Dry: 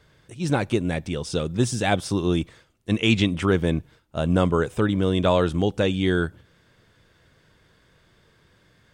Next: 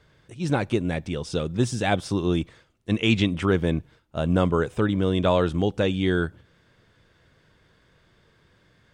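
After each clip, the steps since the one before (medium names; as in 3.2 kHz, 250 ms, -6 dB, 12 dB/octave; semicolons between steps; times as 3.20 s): treble shelf 8.2 kHz -8.5 dB; trim -1 dB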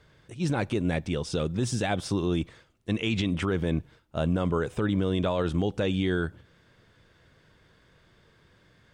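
peak limiter -17.5 dBFS, peak gain reduction 9 dB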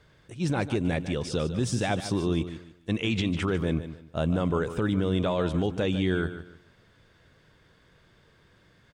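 feedback delay 149 ms, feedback 28%, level -12 dB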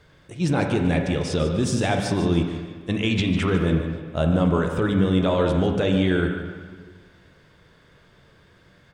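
reverberation RT60 1.6 s, pre-delay 5 ms, DRR 4 dB; trim +4 dB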